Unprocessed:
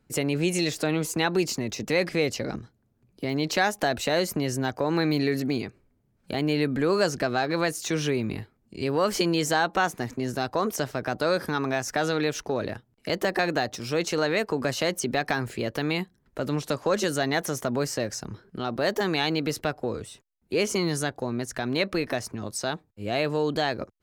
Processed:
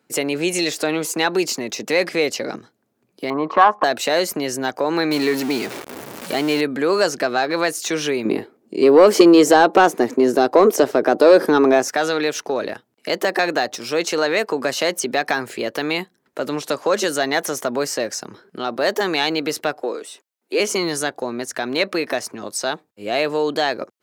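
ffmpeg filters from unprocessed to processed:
-filter_complex "[0:a]asettb=1/sr,asplit=3[a][b][c];[a]atrim=end=3.304[d];[b]atrim=start=3.3:end=3.84,asetpts=PTS-STARTPTS,afade=t=in:d=0.004:c=qsin,afade=t=out:st=0.536:d=0.004:c=qsin,lowpass=f=1.1k:t=q:w=13[e];[c]atrim=start=3.836[f];[d][e]acrossfade=d=0.004:c1=hsin:c2=qsin[g];[g][f]acrossfade=d=0.004:c1=qsin:c2=hsin,asettb=1/sr,asplit=3[h][i][j];[h]atrim=end=5.114[k];[i]atrim=start=5.11:end=6.61,asetpts=PTS-STARTPTS,afade=t=in:d=0.004:c=qsin,afade=t=out:st=1.496:d=0.004:c=qsin,aeval=exprs='val(0)+0.5*0.0316*sgn(val(0))':c=same[l];[j]atrim=start=6.606[m];[k][l]acrossfade=d=0.004:c1=hsin:c2=qsin[n];[n][m]acrossfade=d=0.004:c1=qsin:c2=hsin,asettb=1/sr,asplit=3[o][p][q];[o]atrim=end=8.254[r];[p]atrim=start=8.25:end=11.88,asetpts=PTS-STARTPTS,afade=t=in:d=0.004:c=qsin,afade=t=out:st=3.626:d=0.004:c=qsin,equalizer=f=370:t=o:w=2:g=13[s];[q]atrim=start=11.876[t];[r][s]acrossfade=d=0.004:c1=hsin:c2=qsin[u];[u][t]acrossfade=d=0.004:c1=qsin:c2=hsin,asettb=1/sr,asplit=3[v][w][x];[v]atrim=end=19.814[y];[w]atrim=start=19.81:end=20.6,asetpts=PTS-STARTPTS,afade=t=in:d=0.004:c=qsin,afade=t=out:st=0.786:d=0.004:c=qsin,highpass=f=270:w=0.5412,highpass=f=270:w=1.3066[z];[x]atrim=start=20.596[aa];[y][z]acrossfade=d=0.004:c1=hsin:c2=qsin[ab];[ab][aa]acrossfade=d=0.004:c1=qsin:c2=hsin,highpass=310,acontrast=77"

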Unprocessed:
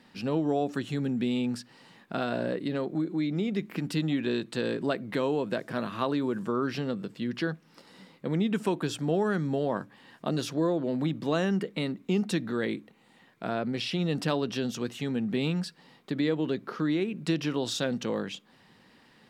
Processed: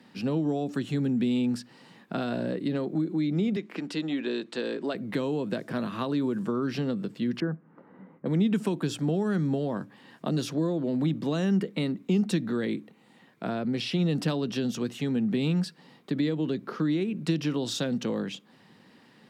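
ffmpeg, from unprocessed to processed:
-filter_complex "[0:a]asettb=1/sr,asplit=3[a][b][c];[a]atrim=end=3.564[d];[b]atrim=start=3.56:end=4.95,asetpts=PTS-STARTPTS,afade=t=in:d=0.004:c=qsin,afade=t=out:st=1.386:d=0.004:c=qsin,highpass=330,lowpass=7.2k[e];[c]atrim=start=4.946[f];[d][e]acrossfade=d=0.004:c1=hsin:c2=qsin[g];[g][f]acrossfade=d=0.004:c1=qsin:c2=hsin,asettb=1/sr,asplit=3[h][i][j];[h]atrim=end=7.404[k];[i]atrim=start=7.4:end=8.26,asetpts=PTS-STARTPTS,afade=t=in:d=0.004:c=qsin,afade=t=out:st=0.856:d=0.004:c=qsin,lowpass=f=1.6k:w=0.5412,lowpass=f=1.6k:w=1.3066[l];[j]atrim=start=8.256[m];[k][l]acrossfade=d=0.004:c1=hsin:c2=qsin[n];[n][m]acrossfade=d=0.004:c1=qsin:c2=hsin,highpass=140,lowshelf=f=360:g=7,acrossover=split=250|3000[o][p][q];[p]acompressor=threshold=-29dB:ratio=6[r];[o][r][q]amix=inputs=3:normalize=0"

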